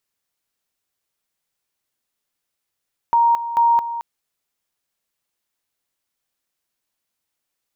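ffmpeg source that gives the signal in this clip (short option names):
-f lavfi -i "aevalsrc='pow(10,(-11.5-12*gte(mod(t,0.44),0.22))/20)*sin(2*PI*935*t)':d=0.88:s=44100"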